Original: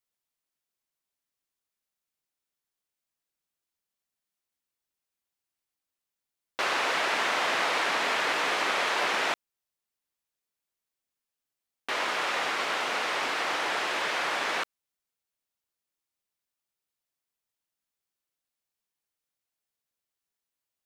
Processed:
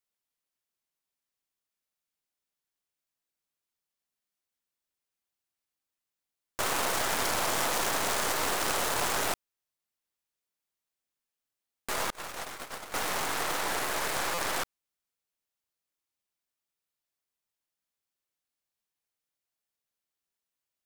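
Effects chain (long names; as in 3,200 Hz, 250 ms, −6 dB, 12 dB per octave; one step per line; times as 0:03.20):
stylus tracing distortion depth 0.47 ms
0:12.10–0:12.94: noise gate −27 dBFS, range −33 dB
buffer that repeats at 0:14.34, samples 256, times 6
level −1.5 dB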